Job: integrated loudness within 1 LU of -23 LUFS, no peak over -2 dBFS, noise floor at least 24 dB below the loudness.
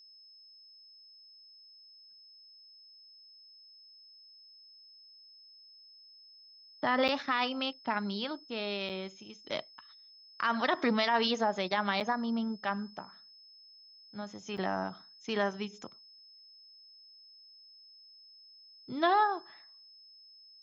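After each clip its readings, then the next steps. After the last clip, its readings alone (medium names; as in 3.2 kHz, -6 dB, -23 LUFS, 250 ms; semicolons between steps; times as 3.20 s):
dropouts 4; longest dropout 7.4 ms; steady tone 5.2 kHz; tone level -54 dBFS; loudness -32.5 LUFS; peak level -15.5 dBFS; loudness target -23.0 LUFS
-> interpolate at 7.08/8.89/12.00/14.57 s, 7.4 ms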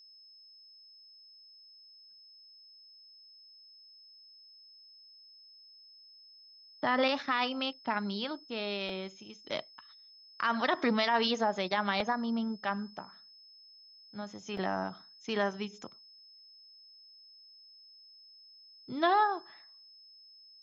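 dropouts 0; steady tone 5.2 kHz; tone level -54 dBFS
-> band-stop 5.2 kHz, Q 30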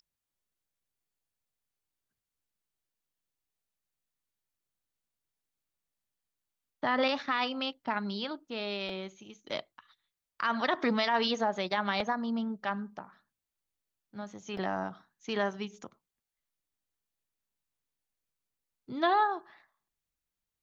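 steady tone not found; loudness -32.0 LUFS; peak level -15.5 dBFS; loudness target -23.0 LUFS
-> trim +9 dB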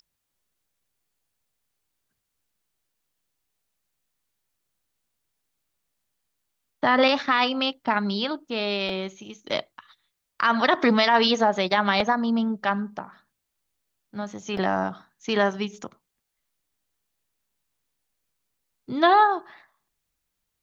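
loudness -23.0 LUFS; peak level -6.5 dBFS; noise floor -80 dBFS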